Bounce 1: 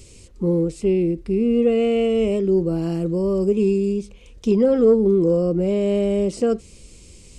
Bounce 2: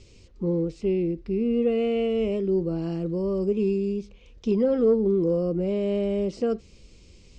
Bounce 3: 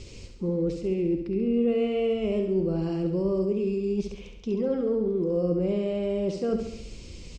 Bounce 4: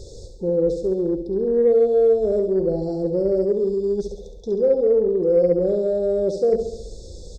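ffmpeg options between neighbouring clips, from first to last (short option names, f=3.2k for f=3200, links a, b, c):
-af "lowpass=f=5.8k:w=0.5412,lowpass=f=5.8k:w=1.3066,volume=-5.5dB"
-af "areverse,acompressor=threshold=-32dB:ratio=12,areverse,aecho=1:1:68|136|204|272|340|408|476:0.447|0.25|0.14|0.0784|0.0439|0.0246|0.0138,volume=8dB"
-af "afftfilt=real='re*(1-between(b*sr/4096,920,3400))':imag='im*(1-between(b*sr/4096,920,3400))':win_size=4096:overlap=0.75,aeval=exprs='0.168*(cos(1*acos(clip(val(0)/0.168,-1,1)))-cos(1*PI/2))+0.00376*(cos(5*acos(clip(val(0)/0.168,-1,1)))-cos(5*PI/2))':c=same,equalizer=f=125:t=o:w=1:g=-3,equalizer=f=250:t=o:w=1:g=-10,equalizer=f=500:t=o:w=1:g=10,equalizer=f=1k:t=o:w=1:g=-8,equalizer=f=2k:t=o:w=1:g=7,equalizer=f=4k:t=o:w=1:g=-5,volume=4.5dB"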